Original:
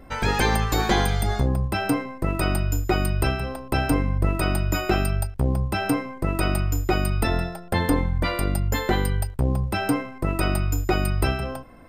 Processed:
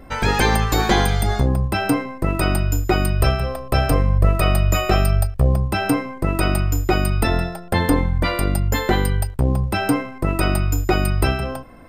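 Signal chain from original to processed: 3.2–5.56 comb 1.7 ms, depth 54%; gain +4 dB

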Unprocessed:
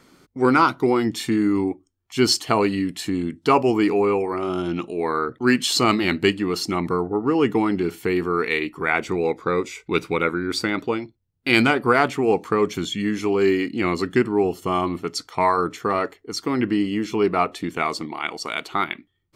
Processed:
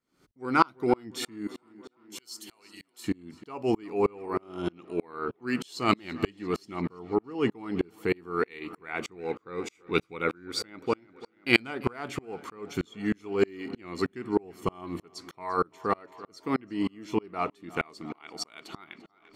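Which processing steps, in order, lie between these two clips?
1.47–3.04 pre-emphasis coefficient 0.97; 10.69–11.57 notch 3600 Hz, Q 8.4; tape echo 0.341 s, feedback 75%, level -18 dB, low-pass 5100 Hz; dB-ramp tremolo swelling 3.2 Hz, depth 35 dB

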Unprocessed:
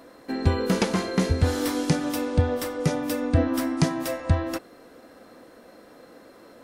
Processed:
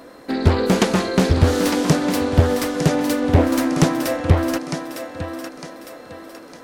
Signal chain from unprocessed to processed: on a send: thinning echo 0.906 s, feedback 43%, high-pass 260 Hz, level -7.5 dB; on the sum: Doppler distortion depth 0.97 ms; gain +6.5 dB

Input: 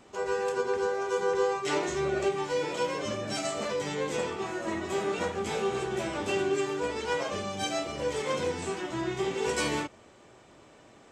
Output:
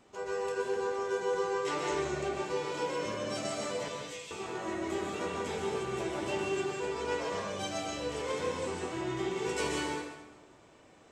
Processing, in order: 3.88–4.31 steep high-pass 2300 Hz; plate-style reverb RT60 1.1 s, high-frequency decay 0.85×, pre-delay 0.115 s, DRR -0.5 dB; gain -6.5 dB

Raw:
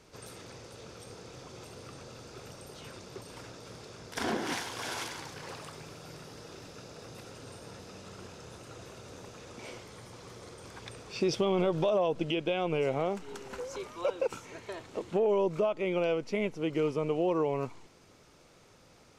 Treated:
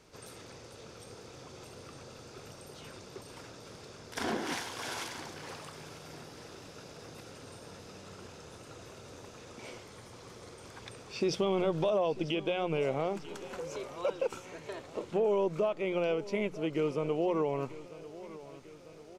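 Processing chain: notches 60/120/180 Hz; on a send: feedback echo 0.945 s, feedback 55%, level -17 dB; on the sum: gain -1.5 dB

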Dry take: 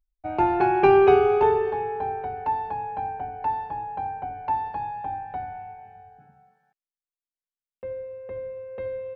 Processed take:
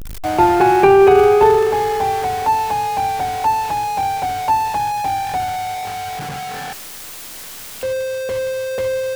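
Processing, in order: zero-crossing step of -29 dBFS; maximiser +8.5 dB; gain -1 dB

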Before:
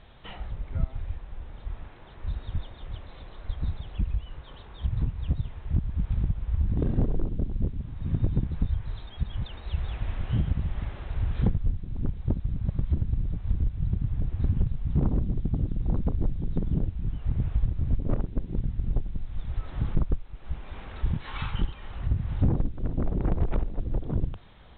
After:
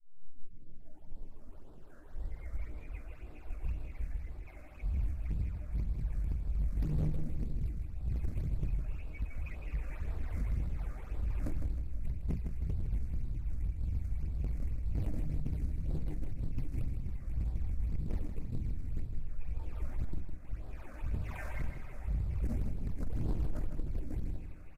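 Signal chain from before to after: tape start at the beginning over 2.90 s; high shelf 3200 Hz +9 dB; notches 50/100/150/200/250/300 Hz; in parallel at -6 dB: sample-rate reducer 3300 Hz, jitter 20%; on the sum: resonator bank D2 minor, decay 0.34 s; phaser stages 8, 1.9 Hz, lowest notch 160–3300 Hz; overloaded stage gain 33.5 dB; pitch shift -6.5 st; on a send: feedback echo 0.157 s, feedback 45%, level -7.5 dB; on the sum: gain +4.5 dB

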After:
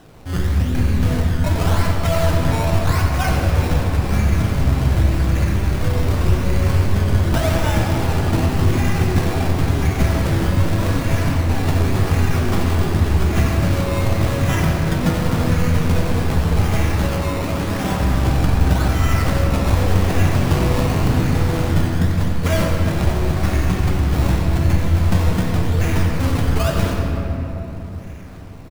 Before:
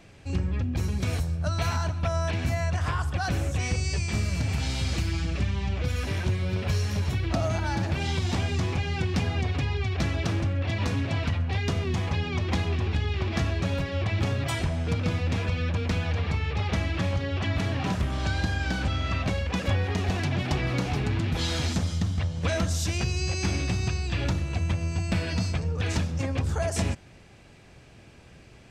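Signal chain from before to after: CVSD 16 kbps; 14.47–15.33 comb 5.4 ms, depth 75%; 16.9–17.9 HPF 170 Hz 12 dB/oct; decimation with a swept rate 19×, swing 100% 0.88 Hz; frequency-shifting echo 90 ms, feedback 58%, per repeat -89 Hz, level -10 dB; shoebox room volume 220 m³, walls hard, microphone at 0.5 m; gain +6 dB

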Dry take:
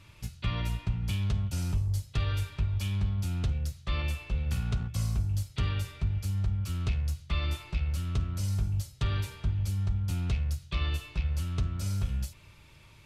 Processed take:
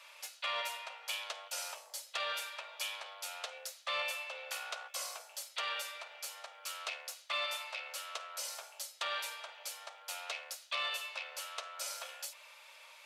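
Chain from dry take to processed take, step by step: steep high-pass 510 Hz 72 dB/oct; in parallel at -4 dB: soft clip -35.5 dBFS, distortion -16 dB

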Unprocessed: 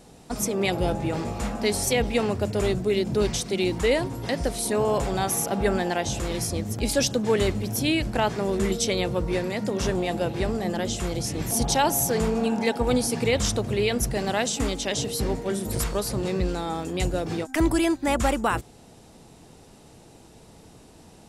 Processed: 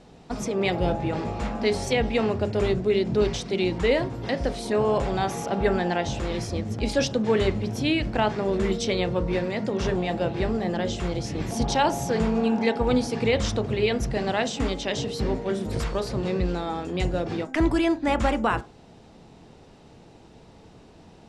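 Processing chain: LPF 4400 Hz 12 dB/oct; on a send: reverb RT60 0.35 s, pre-delay 20 ms, DRR 12.5 dB

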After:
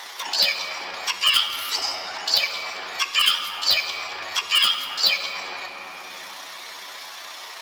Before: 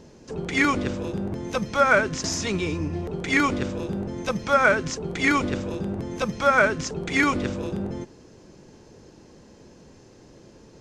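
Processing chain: HPF 860 Hz 12 dB/oct; resonant high shelf 3400 Hz -11 dB, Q 1.5; wide varispeed 2.13×; in parallel at -4.5 dB: wrapped overs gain 10.5 dB; on the sum: whisperiser; granular stretch 1.5×, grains 65 ms; on a send at -5.5 dB: reverb RT60 2.6 s, pre-delay 3 ms; on the sum: three-band squash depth 70%

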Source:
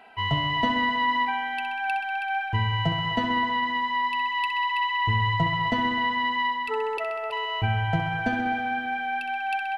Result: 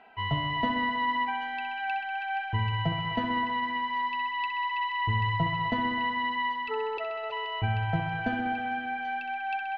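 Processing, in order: air absorption 190 m; thin delay 0.785 s, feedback 50%, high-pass 4300 Hz, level -3.5 dB; gain -3 dB

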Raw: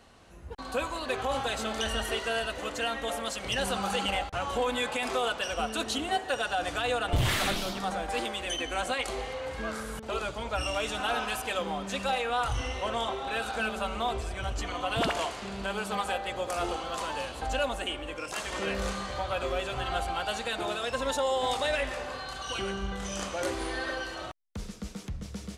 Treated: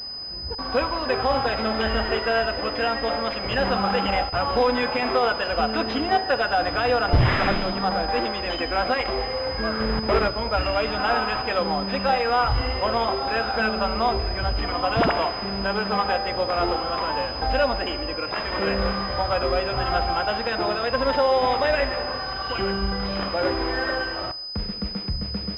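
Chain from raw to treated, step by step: 9.8–10.28 half-waves squared off; Schroeder reverb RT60 1 s, combs from 25 ms, DRR 17 dB; pulse-width modulation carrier 5000 Hz; gain +8.5 dB

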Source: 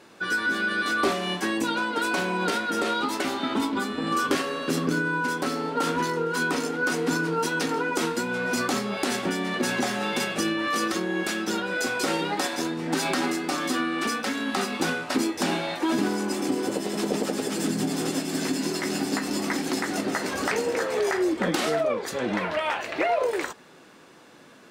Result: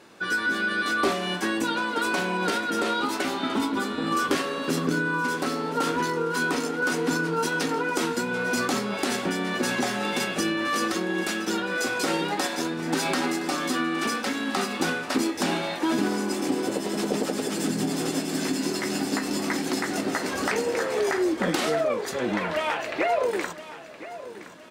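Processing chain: feedback echo 1.018 s, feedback 38%, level -15 dB

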